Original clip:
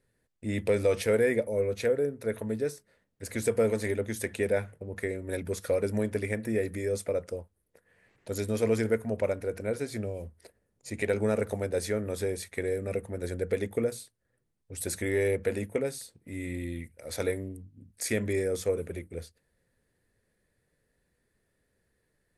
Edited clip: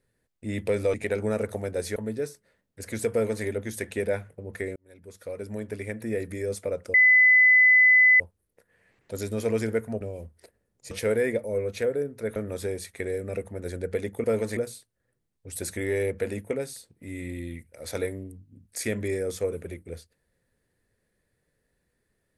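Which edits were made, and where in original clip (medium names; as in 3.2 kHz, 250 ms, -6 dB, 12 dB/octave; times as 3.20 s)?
0.94–2.39 s: swap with 10.92–11.94 s
3.55–3.88 s: copy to 13.82 s
5.19–6.71 s: fade in
7.37 s: add tone 2.01 kHz -13.5 dBFS 1.26 s
9.18–10.02 s: delete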